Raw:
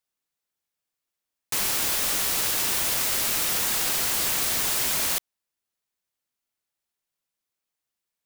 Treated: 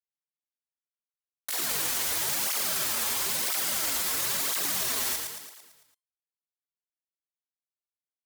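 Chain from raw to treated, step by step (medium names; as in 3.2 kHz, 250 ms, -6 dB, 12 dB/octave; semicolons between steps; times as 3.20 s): high-pass 79 Hz 6 dB/octave; peaking EQ 1.5 kHz -2.5 dB 0.37 oct; hum notches 60/120/180 Hz; waveshaping leveller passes 5; vibrato 0.3 Hz 6.4 cents; feedback comb 610 Hz, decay 0.31 s, mix 40%; pitch shift +9.5 st; on a send: feedback delay 111 ms, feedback 55%, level -5 dB; on the sum: cancelling through-zero flanger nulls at 0.99 Hz, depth 7.1 ms; trim -4.5 dB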